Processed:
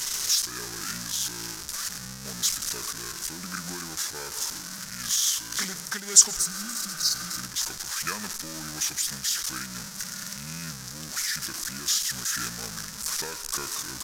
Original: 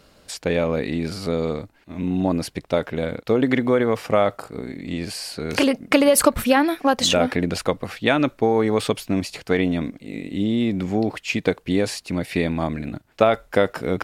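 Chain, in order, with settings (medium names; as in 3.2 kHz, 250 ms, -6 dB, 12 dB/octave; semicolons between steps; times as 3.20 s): jump at every zero crossing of -17 dBFS; pre-emphasis filter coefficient 0.8; spectral replace 6.39–7.35 s, 440–5200 Hz after; graphic EQ 125/500/1000/2000/4000/8000 Hz -8/-6/-4/+8/-5/+12 dB; pitch shift -6 st; on a send at -16 dB: reverberation RT60 1.0 s, pre-delay 107 ms; on the sum: random flutter of the level, depth 65%; trim -5 dB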